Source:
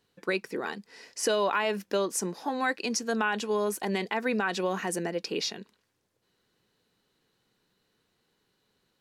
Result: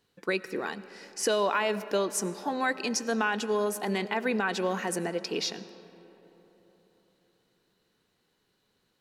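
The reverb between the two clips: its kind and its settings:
comb and all-pass reverb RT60 3.9 s, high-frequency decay 0.45×, pre-delay 50 ms, DRR 15 dB

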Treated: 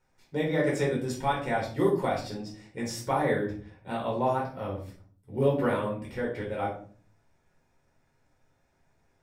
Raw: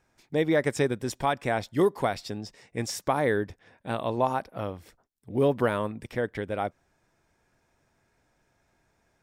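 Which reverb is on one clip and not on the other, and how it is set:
rectangular room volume 390 cubic metres, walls furnished, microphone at 4.6 metres
level −9.5 dB

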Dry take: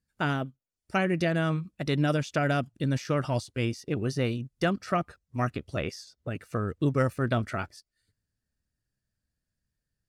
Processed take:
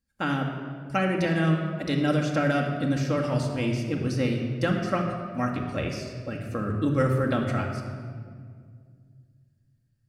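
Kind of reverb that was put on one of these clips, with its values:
rectangular room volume 3,400 cubic metres, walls mixed, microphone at 2.2 metres
level −1 dB

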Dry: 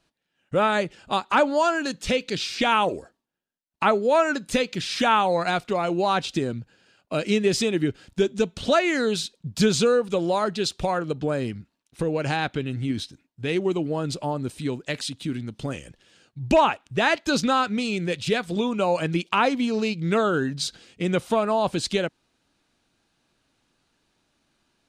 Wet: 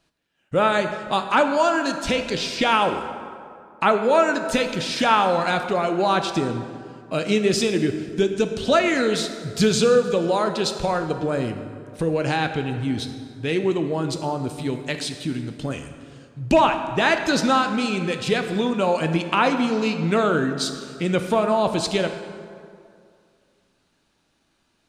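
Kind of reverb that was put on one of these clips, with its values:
dense smooth reverb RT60 2.3 s, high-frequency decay 0.55×, DRR 6.5 dB
level +1.5 dB

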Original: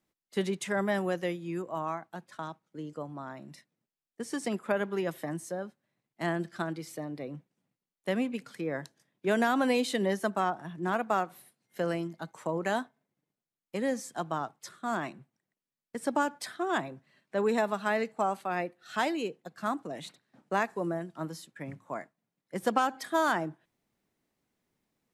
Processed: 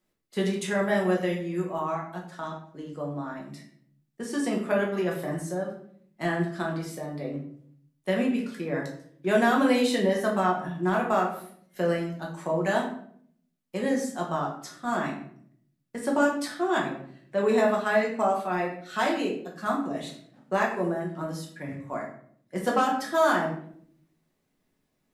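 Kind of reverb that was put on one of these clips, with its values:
rectangular room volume 90 cubic metres, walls mixed, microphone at 1 metre

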